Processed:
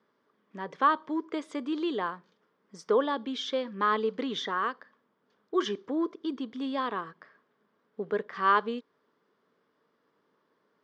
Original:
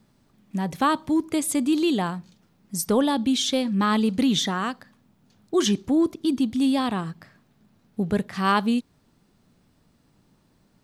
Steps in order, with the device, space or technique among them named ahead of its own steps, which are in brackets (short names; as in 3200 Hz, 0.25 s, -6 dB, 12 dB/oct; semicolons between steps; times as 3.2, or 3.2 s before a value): phone earpiece (speaker cabinet 440–4300 Hz, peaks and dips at 440 Hz +9 dB, 760 Hz -7 dB, 1100 Hz +6 dB, 1600 Hz +3 dB, 2600 Hz -8 dB, 4100 Hz -9 dB); gain -4 dB